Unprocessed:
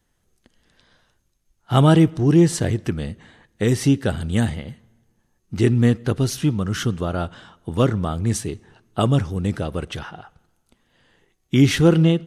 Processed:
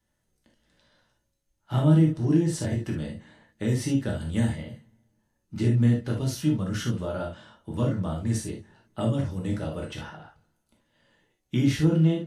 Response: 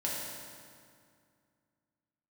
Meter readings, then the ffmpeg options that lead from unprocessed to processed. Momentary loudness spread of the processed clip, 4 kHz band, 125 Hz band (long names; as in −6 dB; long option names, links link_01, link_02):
16 LU, −9.5 dB, −5.0 dB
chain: -filter_complex "[0:a]acrossover=split=330[link_01][link_02];[link_02]acompressor=threshold=-24dB:ratio=6[link_03];[link_01][link_03]amix=inputs=2:normalize=0[link_04];[1:a]atrim=start_sample=2205,atrim=end_sample=3528[link_05];[link_04][link_05]afir=irnorm=-1:irlink=0,volume=-8.5dB"